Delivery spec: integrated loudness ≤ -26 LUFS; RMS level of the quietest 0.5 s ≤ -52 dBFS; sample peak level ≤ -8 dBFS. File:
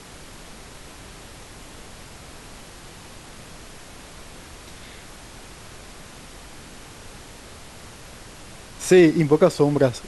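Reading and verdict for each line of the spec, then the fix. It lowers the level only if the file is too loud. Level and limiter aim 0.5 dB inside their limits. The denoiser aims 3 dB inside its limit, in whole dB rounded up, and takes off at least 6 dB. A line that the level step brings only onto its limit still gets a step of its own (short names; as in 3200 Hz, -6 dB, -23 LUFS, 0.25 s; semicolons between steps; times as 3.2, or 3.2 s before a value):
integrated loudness -17.5 LUFS: fail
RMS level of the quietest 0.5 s -42 dBFS: fail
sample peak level -4.5 dBFS: fail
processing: denoiser 6 dB, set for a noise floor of -42 dBFS; gain -9 dB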